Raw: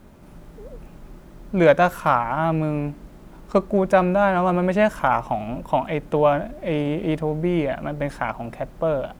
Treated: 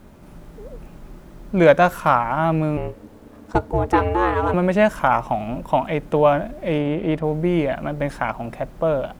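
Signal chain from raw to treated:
0:02.77–0:04.54: ring modulation 260 Hz
0:06.78–0:07.24: bass and treble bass −1 dB, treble −8 dB
level +2 dB

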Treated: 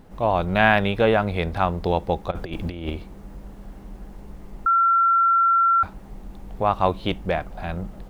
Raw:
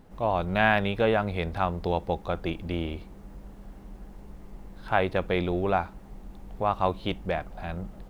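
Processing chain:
0:02.31–0:02.90: compressor whose output falls as the input rises −33 dBFS, ratio −0.5
0:04.66–0:05.83: beep over 1,360 Hz −19.5 dBFS
level +5 dB

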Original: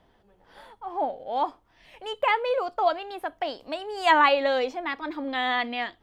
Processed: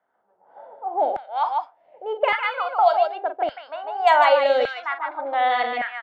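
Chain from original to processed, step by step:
low-pass that shuts in the quiet parts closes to 370 Hz, open at −18 dBFS
on a send: loudspeakers that aren't time-aligned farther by 15 metres −10 dB, 51 metres −6 dB
on the sum: auto-filter high-pass saw down 0.86 Hz 360–1,600 Hz
comb filter 1.4 ms, depth 35%
multiband upward and downward compressor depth 40%

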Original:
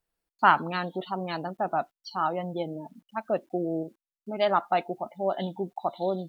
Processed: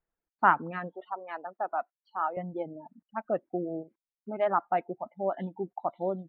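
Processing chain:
0:00.93–0:02.37: high-pass filter 540 Hz 12 dB per octave
reverb reduction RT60 1.1 s
low-pass filter 2,000 Hz 24 dB per octave
level −2 dB

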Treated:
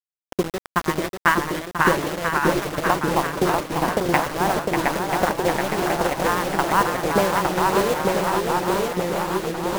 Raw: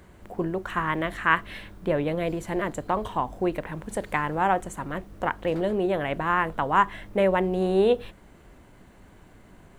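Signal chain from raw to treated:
adaptive Wiener filter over 25 samples
noise gate −39 dBFS, range −13 dB
in parallel at −1.5 dB: downward compressor 6 to 1, threshold −31 dBFS, peak gain reduction 15.5 dB
on the sum: transient designer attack +11 dB, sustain −11 dB
bit reduction 4 bits
on a send: feedback echo with a long and a short gap by turns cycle 988 ms, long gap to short 1.5 to 1, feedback 59%, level −5.5 dB
on the sum: delay with pitch and tempo change per echo 468 ms, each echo −1 semitone, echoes 2
level −5.5 dB

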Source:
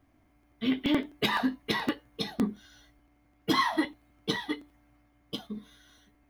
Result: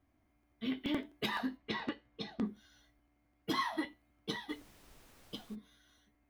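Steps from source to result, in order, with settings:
0:01.57–0:02.45: low-pass filter 4,500 Hz 12 dB per octave
tuned comb filter 73 Hz, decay 0.26 s, harmonics odd, mix 50%
0:04.48–0:05.54: background noise pink −57 dBFS
level −4 dB

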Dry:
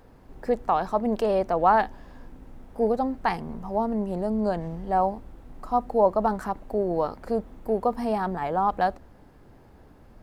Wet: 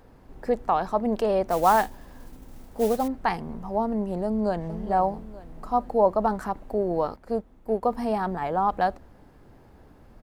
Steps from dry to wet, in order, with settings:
0:01.48–0:03.08: noise that follows the level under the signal 19 dB
0:04.25–0:04.80: delay throw 440 ms, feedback 40%, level −11 dB
0:07.16–0:07.83: expander for the loud parts 1.5 to 1, over −40 dBFS

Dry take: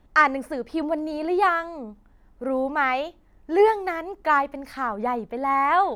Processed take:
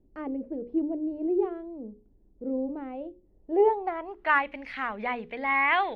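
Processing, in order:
high shelf with overshoot 2,100 Hz +13 dB, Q 1.5
mains-hum notches 60/120/180/240/300/360/420/480/540 Hz
dynamic equaliser 4,900 Hz, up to −6 dB, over −44 dBFS, Q 2.3
low-pass filter sweep 380 Hz → 2,100 Hz, 0:03.22–0:04.48
level −6 dB

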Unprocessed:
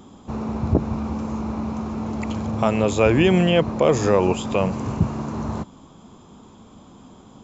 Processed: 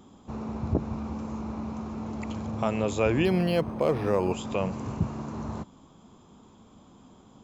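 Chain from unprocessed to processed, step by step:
0:03.25–0:04.32: linearly interpolated sample-rate reduction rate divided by 6×
level −7.5 dB

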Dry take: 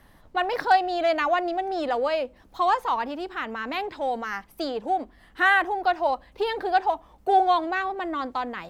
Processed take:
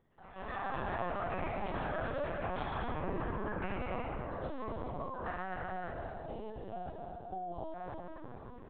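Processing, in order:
spectrum averaged block by block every 200 ms
source passing by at 0:03.24, 16 m/s, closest 1.2 metres
high-pass filter 140 Hz 12 dB per octave
hum removal 195.1 Hz, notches 7
treble cut that deepens with the level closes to 1,700 Hz, closed at −47.5 dBFS
tilt shelving filter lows +7 dB, about 700 Hz
downward compressor 16 to 1, threshold −55 dBFS, peak gain reduction 21.5 dB
on a send: bouncing-ball delay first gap 260 ms, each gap 0.65×, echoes 5
on the sum: delay with pitch and tempo change per echo 115 ms, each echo +7 semitones, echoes 2
linear-prediction vocoder at 8 kHz pitch kept
level +18 dB

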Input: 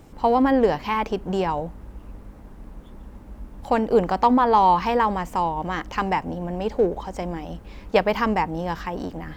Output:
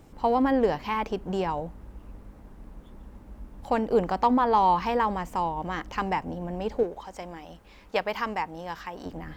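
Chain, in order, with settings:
0:06.83–0:09.06: low-shelf EQ 460 Hz −10.5 dB
level −4.5 dB

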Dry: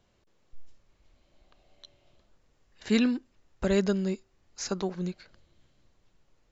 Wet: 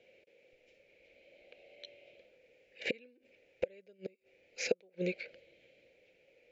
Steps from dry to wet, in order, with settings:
gate with flip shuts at −22 dBFS, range −37 dB
pair of resonant band-passes 1,100 Hz, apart 2.2 octaves
level +17.5 dB

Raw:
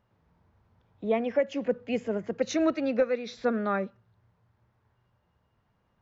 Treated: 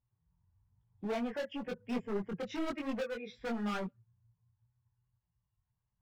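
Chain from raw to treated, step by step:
spectral dynamics exaggerated over time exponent 1.5
in parallel at 0 dB: downward compressor, threshold −37 dBFS, peak gain reduction 15.5 dB
on the sum: Savitzky-Golay smoothing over 25 samples
hard clipping −31 dBFS, distortion −5 dB
multi-voice chorus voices 6, 1 Hz, delay 21 ms, depth 3.9 ms

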